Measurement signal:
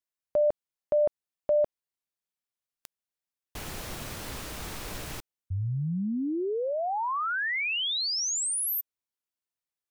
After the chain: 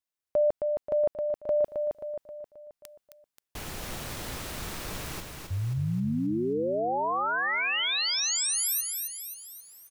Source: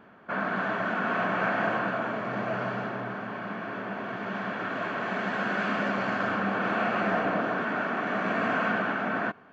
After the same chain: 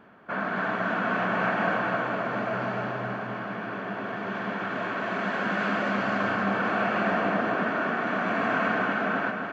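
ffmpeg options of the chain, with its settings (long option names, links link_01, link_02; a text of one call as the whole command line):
ffmpeg -i in.wav -af "areverse,acompressor=mode=upward:threshold=-40dB:ratio=2.5:attack=0.11:release=814:knee=2.83:detection=peak,areverse,aecho=1:1:266|532|798|1064|1330|1596:0.562|0.281|0.141|0.0703|0.0351|0.0176" out.wav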